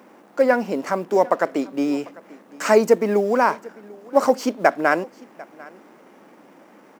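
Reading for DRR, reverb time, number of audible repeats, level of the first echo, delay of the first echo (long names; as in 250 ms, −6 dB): no reverb audible, no reverb audible, 1, −22.5 dB, 746 ms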